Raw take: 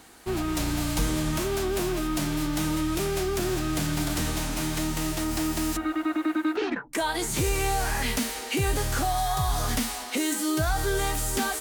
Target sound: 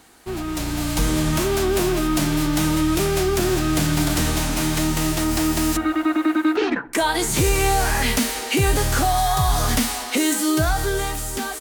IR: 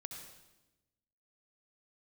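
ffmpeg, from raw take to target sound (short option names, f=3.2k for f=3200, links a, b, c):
-filter_complex "[0:a]dynaudnorm=f=140:g=13:m=7dB,asplit=2[a][b];[b]adelay=64,lowpass=f=2.2k:p=1,volume=-20dB,asplit=2[c][d];[d]adelay=64,lowpass=f=2.2k:p=1,volume=0.55,asplit=2[e][f];[f]adelay=64,lowpass=f=2.2k:p=1,volume=0.55,asplit=2[g][h];[h]adelay=64,lowpass=f=2.2k:p=1,volume=0.55[i];[a][c][e][g][i]amix=inputs=5:normalize=0"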